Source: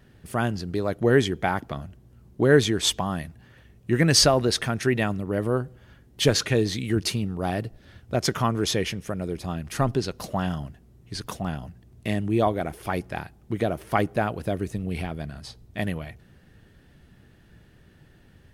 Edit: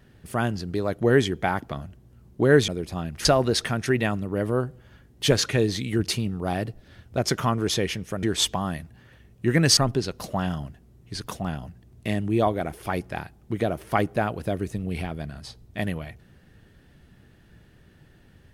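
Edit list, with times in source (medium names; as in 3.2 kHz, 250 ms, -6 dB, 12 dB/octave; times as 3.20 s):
2.68–4.22 s: swap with 9.20–9.77 s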